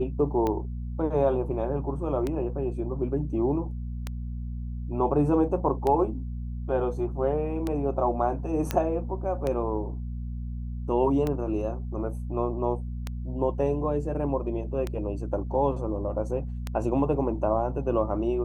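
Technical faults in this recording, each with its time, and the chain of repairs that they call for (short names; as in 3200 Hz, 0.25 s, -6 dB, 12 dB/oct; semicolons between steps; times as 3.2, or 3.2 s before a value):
hum 60 Hz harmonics 4 -33 dBFS
tick 33 1/3 rpm -16 dBFS
8.71 pop -11 dBFS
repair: de-click; de-hum 60 Hz, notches 4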